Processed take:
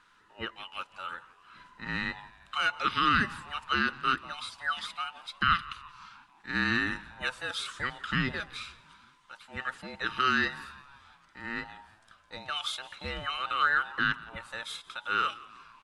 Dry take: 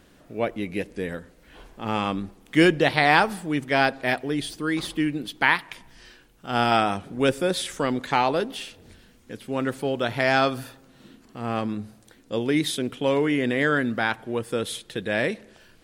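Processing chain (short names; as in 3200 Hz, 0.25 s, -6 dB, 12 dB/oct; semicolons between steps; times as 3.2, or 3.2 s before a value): band inversion scrambler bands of 1000 Hz; LPF 10000 Hz 24 dB/oct; tone controls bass -7 dB, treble -11 dB; limiter -12 dBFS, peak gain reduction 7 dB; EQ curve 200 Hz 0 dB, 760 Hz -28 dB, 1200 Hz +4 dB, 2200 Hz -5 dB, 3100 Hz 0 dB; frequency-shifting echo 0.171 s, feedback 58%, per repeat -80 Hz, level -20.5 dB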